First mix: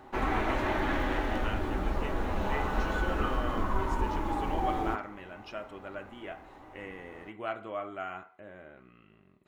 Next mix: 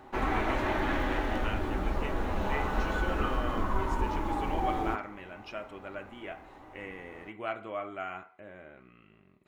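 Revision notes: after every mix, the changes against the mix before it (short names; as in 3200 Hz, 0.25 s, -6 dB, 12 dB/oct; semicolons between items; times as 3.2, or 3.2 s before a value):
speech: add bell 2300 Hz +4.5 dB 0.29 oct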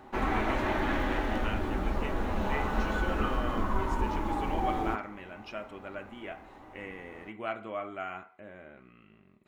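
master: add bell 220 Hz +5.5 dB 0.21 oct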